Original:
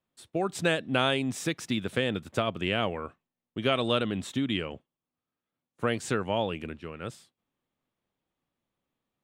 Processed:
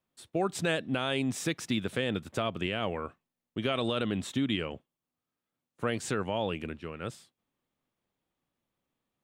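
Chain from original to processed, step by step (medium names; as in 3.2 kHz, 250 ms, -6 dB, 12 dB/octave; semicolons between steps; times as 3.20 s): peak limiter -18.5 dBFS, peak gain reduction 8 dB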